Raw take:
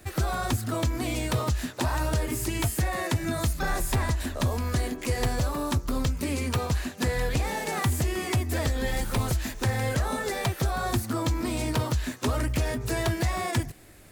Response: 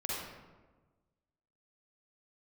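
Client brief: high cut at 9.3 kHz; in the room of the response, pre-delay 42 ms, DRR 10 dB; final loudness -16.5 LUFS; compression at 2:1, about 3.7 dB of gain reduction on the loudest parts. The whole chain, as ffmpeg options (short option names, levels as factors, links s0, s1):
-filter_complex "[0:a]lowpass=9300,acompressor=threshold=0.0398:ratio=2,asplit=2[s0][s1];[1:a]atrim=start_sample=2205,adelay=42[s2];[s1][s2]afir=irnorm=-1:irlink=0,volume=0.2[s3];[s0][s3]amix=inputs=2:normalize=0,volume=5.01"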